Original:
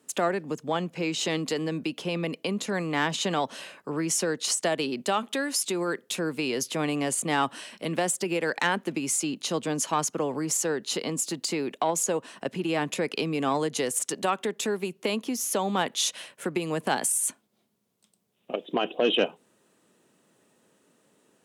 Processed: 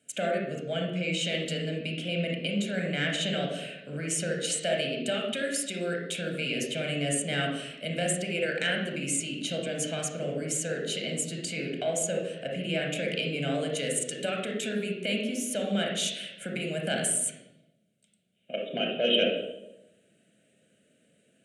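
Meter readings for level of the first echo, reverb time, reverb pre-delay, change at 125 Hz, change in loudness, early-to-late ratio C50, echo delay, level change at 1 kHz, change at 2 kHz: no echo audible, 0.90 s, 29 ms, +2.0 dB, −2.0 dB, 3.0 dB, no echo audible, −10.5 dB, 0.0 dB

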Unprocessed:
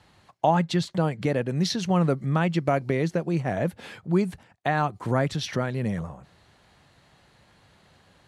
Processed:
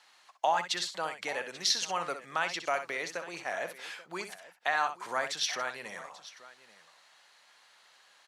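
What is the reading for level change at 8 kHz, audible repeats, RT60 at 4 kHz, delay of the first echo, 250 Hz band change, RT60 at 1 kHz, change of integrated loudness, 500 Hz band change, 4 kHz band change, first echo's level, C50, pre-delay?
+4.5 dB, 2, no reverb audible, 63 ms, −24.0 dB, no reverb audible, −7.0 dB, −10.5 dB, +2.0 dB, −9.5 dB, no reverb audible, no reverb audible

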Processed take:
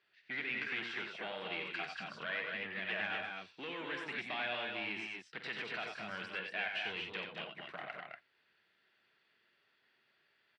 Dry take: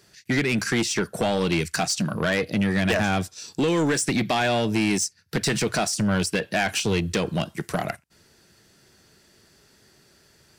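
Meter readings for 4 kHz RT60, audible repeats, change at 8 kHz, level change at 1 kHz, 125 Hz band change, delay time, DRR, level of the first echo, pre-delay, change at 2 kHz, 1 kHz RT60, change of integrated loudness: no reverb audible, 3, below −35 dB, −16.0 dB, −30.0 dB, 48 ms, no reverb audible, −11.5 dB, no reverb audible, −10.0 dB, no reverb audible, −16.0 dB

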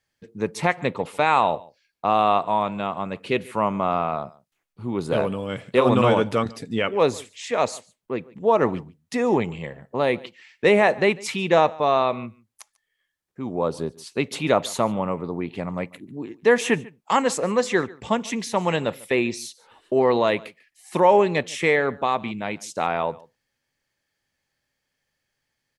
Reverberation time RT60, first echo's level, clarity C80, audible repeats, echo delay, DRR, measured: no reverb audible, −23.0 dB, no reverb audible, 1, 145 ms, no reverb audible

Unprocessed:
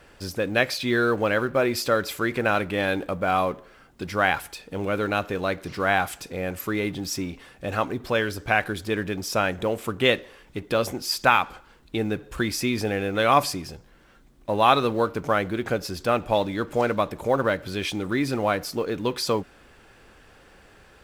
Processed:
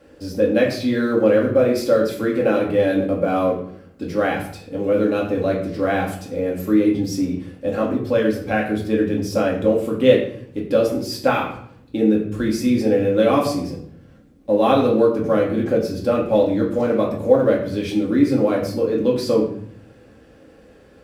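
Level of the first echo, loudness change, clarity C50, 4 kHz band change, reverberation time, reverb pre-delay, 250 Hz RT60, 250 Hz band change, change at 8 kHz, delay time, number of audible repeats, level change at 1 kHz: no echo audible, +5.5 dB, 6.5 dB, −3.5 dB, 0.60 s, 4 ms, 0.85 s, +9.5 dB, −3.5 dB, no echo audible, no echo audible, −2.0 dB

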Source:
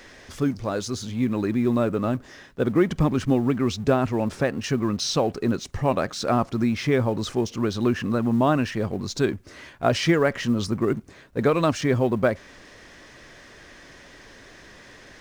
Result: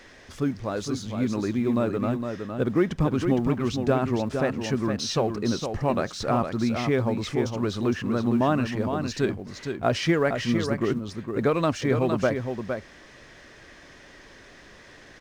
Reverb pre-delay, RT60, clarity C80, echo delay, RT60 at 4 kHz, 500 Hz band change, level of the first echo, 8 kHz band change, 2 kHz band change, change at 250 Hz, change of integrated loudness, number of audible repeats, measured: no reverb audible, no reverb audible, no reverb audible, 461 ms, no reverb audible, −1.5 dB, −6.5 dB, −3.5 dB, −2.0 dB, −1.5 dB, −2.0 dB, 1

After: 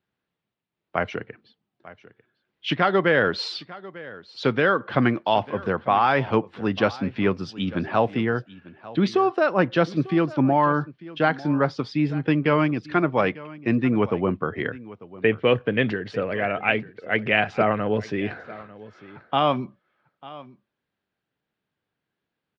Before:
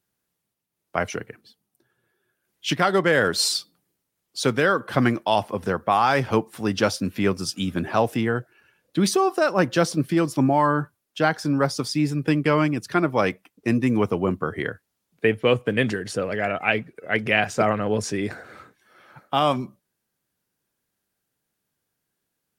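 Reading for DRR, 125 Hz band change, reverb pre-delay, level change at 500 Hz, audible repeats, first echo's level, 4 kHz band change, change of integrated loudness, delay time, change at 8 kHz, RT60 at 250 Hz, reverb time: no reverb audible, −0.5 dB, no reverb audible, 0.0 dB, 1, −19.0 dB, −3.5 dB, −0.5 dB, 896 ms, below −20 dB, no reverb audible, no reverb audible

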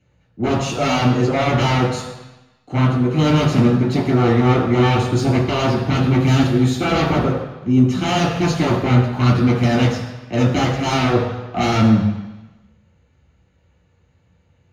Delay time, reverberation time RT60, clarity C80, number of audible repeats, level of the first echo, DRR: no echo audible, 1.1 s, 5.5 dB, no echo audible, no echo audible, −6.0 dB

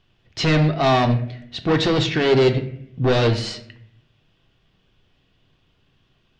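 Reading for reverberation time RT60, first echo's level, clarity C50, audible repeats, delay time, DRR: 0.65 s, no echo audible, 11.0 dB, no echo audible, no echo audible, 5.0 dB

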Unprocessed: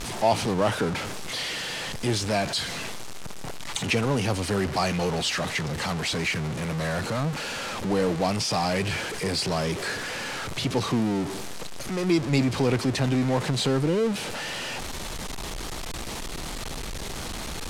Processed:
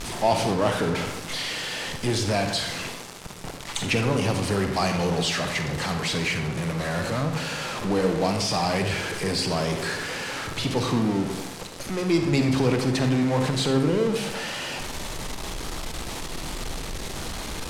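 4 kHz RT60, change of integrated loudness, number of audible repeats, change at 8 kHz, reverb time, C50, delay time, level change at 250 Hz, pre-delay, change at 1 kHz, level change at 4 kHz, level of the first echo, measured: 0.55 s, +1.5 dB, no echo audible, +0.5 dB, 0.85 s, 6.0 dB, no echo audible, +1.5 dB, 39 ms, +1.0 dB, +1.0 dB, no echo audible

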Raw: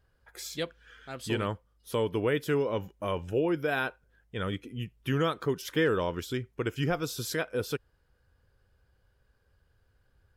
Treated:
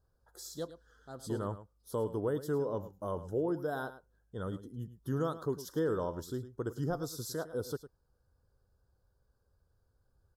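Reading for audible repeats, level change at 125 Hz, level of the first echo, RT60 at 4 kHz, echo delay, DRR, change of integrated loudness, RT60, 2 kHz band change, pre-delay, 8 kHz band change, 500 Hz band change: 1, −5.0 dB, −14.0 dB, no reverb audible, 106 ms, no reverb audible, −5.5 dB, no reverb audible, −14.0 dB, no reverb audible, −5.0 dB, −5.0 dB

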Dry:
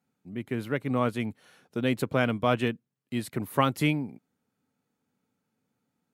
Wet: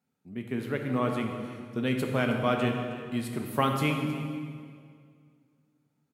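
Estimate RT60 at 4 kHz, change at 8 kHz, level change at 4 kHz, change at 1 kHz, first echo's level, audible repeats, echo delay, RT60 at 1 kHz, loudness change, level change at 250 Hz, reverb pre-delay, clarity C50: 1.7 s, −1.0 dB, −1.0 dB, −0.5 dB, −16.5 dB, 1, 315 ms, 2.0 s, −1.0 dB, 0.0 dB, 4 ms, 4.0 dB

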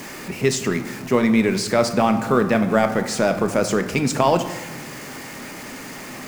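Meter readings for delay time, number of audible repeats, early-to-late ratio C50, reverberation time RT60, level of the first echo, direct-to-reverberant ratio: no echo audible, no echo audible, 10.0 dB, 1.3 s, no echo audible, 7.0 dB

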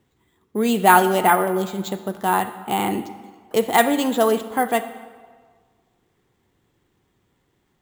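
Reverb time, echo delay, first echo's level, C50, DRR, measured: 1.6 s, no echo audible, no echo audible, 12.5 dB, 12.0 dB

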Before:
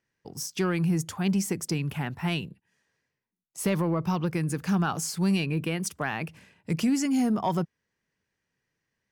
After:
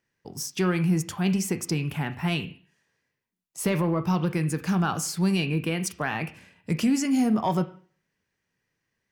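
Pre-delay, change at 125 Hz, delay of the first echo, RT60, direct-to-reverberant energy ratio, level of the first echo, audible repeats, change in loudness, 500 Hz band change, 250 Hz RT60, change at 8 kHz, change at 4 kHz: 7 ms, +2.0 dB, no echo audible, 0.45 s, 8.0 dB, no echo audible, no echo audible, +2.0 dB, +2.0 dB, 0.45 s, +1.5 dB, +2.0 dB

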